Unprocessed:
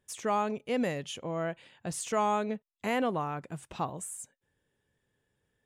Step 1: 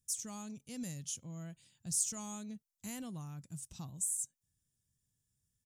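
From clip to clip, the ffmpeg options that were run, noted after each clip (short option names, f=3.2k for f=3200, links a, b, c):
-af "firequalizer=gain_entry='entry(130,0);entry(420,-22);entry(2100,-17);entry(5700,8)':delay=0.05:min_phase=1,volume=-2.5dB"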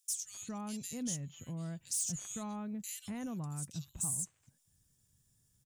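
-filter_complex "[0:a]aeval=exprs='0.112*(cos(1*acos(clip(val(0)/0.112,-1,1)))-cos(1*PI/2))+0.0501*(cos(5*acos(clip(val(0)/0.112,-1,1)))-cos(5*PI/2))':c=same,acrossover=split=2400[a][b];[a]adelay=240[c];[c][b]amix=inputs=2:normalize=0,acompressor=threshold=-48dB:ratio=1.5"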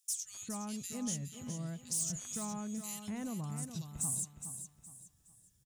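-af "aecho=1:1:416|832|1248|1664:0.355|0.117|0.0386|0.0128"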